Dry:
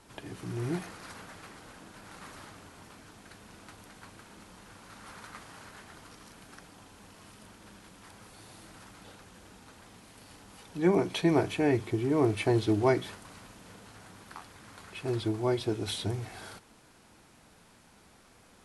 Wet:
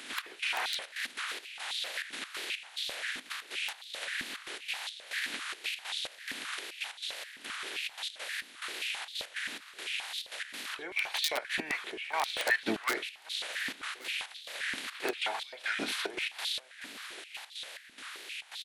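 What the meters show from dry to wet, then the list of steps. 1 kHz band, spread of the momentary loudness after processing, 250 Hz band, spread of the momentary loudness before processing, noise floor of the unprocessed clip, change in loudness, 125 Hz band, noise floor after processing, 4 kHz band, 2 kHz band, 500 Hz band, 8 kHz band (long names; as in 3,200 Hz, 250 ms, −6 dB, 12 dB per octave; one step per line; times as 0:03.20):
−0.5 dB, 9 LU, −14.0 dB, 22 LU, −59 dBFS, −6.0 dB, below −25 dB, −53 dBFS, +10.0 dB, +10.0 dB, −11.5 dB, +6.5 dB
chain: ceiling on every frequency bin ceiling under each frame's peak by 21 dB
flat-topped bell 2,500 Hz +10 dB
downward compressor 3 to 1, threshold −44 dBFS, peak gain reduction 21.5 dB
gate pattern "xx..xxxx.x." 141 BPM −12 dB
tape wow and flutter 69 cents
wrap-around overflow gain 29 dB
single-tap delay 1,130 ms −18.5 dB
high-pass on a step sequencer 7.6 Hz 260–3,700 Hz
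level +6.5 dB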